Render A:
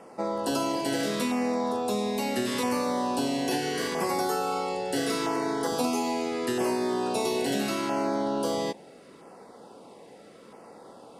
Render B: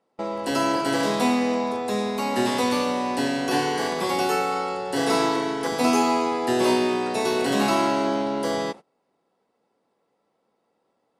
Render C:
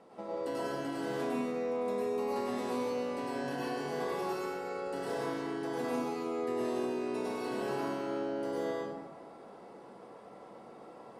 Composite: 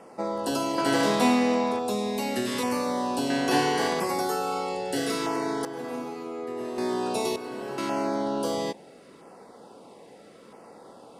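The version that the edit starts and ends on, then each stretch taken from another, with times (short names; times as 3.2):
A
0.78–1.79 from B
3.3–4 from B
5.65–6.78 from C
7.36–7.78 from C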